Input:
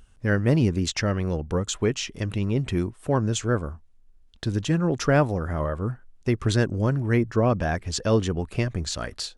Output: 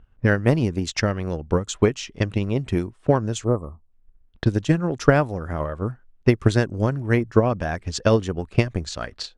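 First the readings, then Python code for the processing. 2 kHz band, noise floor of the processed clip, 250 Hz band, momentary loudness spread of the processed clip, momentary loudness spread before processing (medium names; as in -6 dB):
+3.0 dB, -58 dBFS, +2.0 dB, 9 LU, 8 LU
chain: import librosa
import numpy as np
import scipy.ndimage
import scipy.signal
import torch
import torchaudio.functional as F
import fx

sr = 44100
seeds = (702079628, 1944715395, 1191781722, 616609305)

y = fx.env_lowpass(x, sr, base_hz=1800.0, full_db=-21.5)
y = fx.spec_erase(y, sr, start_s=3.44, length_s=0.48, low_hz=1300.0, high_hz=7500.0)
y = fx.transient(y, sr, attack_db=11, sustain_db=-2)
y = F.gain(torch.from_numpy(y), -2.0).numpy()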